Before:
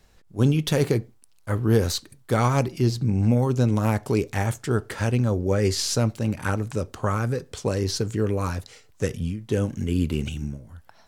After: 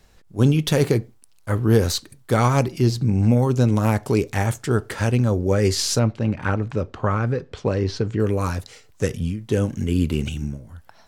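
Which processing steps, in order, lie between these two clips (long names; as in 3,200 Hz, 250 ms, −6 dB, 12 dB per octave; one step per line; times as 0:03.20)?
0:05.99–0:08.20: low-pass filter 3,200 Hz 12 dB per octave
level +3 dB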